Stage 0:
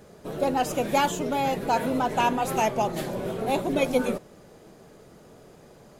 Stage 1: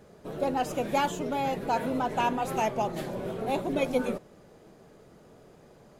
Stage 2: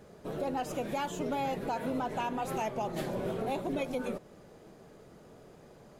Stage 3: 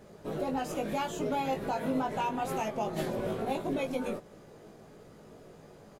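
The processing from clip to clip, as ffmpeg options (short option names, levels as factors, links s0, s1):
-af "highshelf=f=4400:g=-5,volume=0.668"
-af "alimiter=level_in=1.06:limit=0.0631:level=0:latency=1:release=203,volume=0.944"
-filter_complex "[0:a]asplit=2[s0][s1];[s1]adelay=19,volume=0.668[s2];[s0][s2]amix=inputs=2:normalize=0"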